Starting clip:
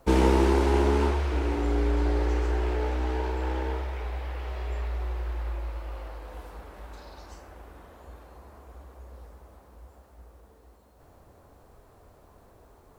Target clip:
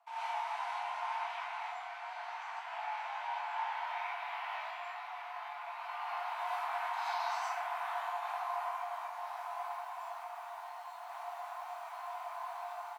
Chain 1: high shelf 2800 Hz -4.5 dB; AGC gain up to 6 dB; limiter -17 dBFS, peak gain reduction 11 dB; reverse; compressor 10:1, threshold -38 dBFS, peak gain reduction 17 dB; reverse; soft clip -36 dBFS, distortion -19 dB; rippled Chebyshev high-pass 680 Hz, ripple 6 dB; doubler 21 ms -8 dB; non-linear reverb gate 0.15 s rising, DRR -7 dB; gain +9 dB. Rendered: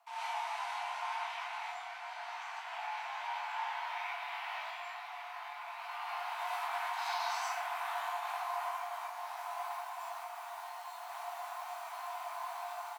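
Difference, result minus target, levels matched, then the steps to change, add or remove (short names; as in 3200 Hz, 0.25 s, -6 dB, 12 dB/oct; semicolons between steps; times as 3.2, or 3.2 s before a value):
soft clip: distortion +18 dB; 4000 Hz band +4.0 dB
change: high shelf 2800 Hz -14 dB; change: soft clip -26 dBFS, distortion -37 dB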